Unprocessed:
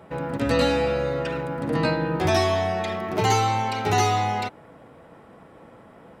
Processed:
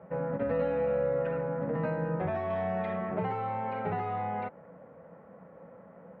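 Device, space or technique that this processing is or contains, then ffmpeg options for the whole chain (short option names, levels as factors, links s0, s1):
bass amplifier: -filter_complex "[0:a]acompressor=threshold=0.0708:ratio=5,highpass=78,equalizer=f=120:t=q:w=4:g=-4,equalizer=f=180:t=q:w=4:g=10,equalizer=f=330:t=q:w=4:g=-7,equalizer=f=540:t=q:w=4:g=10,lowpass=f=2000:w=0.5412,lowpass=f=2000:w=1.3066,asettb=1/sr,asplit=3[s0][s1][s2];[s0]atrim=end=2.504[s3];[s1]atrim=start=2.5:end=3.11,asetpts=PTS-STARTPTS,afade=t=in:d=0.004:c=qsin,afade=t=out:st=0.606:d=0.004:c=qsin,aemphasis=mode=production:type=75kf[s4];[s2]atrim=start=3.106[s5];[s3][s4]acrossfade=d=0.004:c1=hsin:c2=qsin[s6];[s6][s5]acrossfade=d=0.004:c1=qsin:c2=hsin,volume=0.447"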